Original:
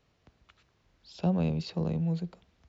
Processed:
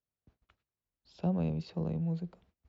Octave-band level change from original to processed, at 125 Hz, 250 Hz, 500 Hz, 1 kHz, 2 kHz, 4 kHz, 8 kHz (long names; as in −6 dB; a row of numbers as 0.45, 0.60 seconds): −3.5 dB, −3.5 dB, −4.0 dB, −4.5 dB, −8.0 dB, −10.0 dB, can't be measured